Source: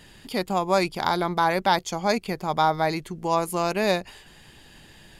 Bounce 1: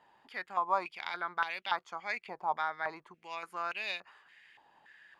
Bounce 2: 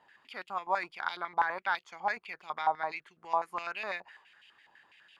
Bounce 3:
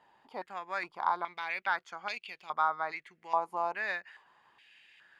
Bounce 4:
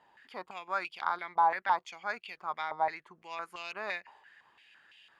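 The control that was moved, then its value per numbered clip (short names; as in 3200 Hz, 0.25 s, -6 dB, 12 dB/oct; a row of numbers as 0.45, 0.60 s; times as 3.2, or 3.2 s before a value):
stepped band-pass, rate: 3.5, 12, 2.4, 5.9 Hz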